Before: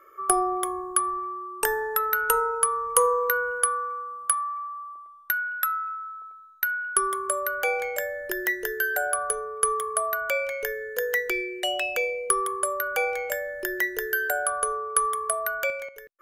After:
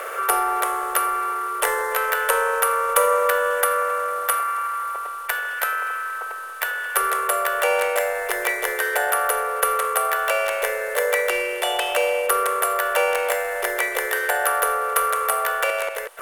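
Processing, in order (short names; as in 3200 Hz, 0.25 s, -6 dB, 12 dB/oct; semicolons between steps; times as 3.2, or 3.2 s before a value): per-bin compression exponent 0.4; ten-band EQ 250 Hz -12 dB, 500 Hz +11 dB, 1000 Hz +8 dB, 2000 Hz +4 dB, 4000 Hz +7 dB, 8000 Hz +7 dB; harmoniser +3 st -3 dB; gain -10 dB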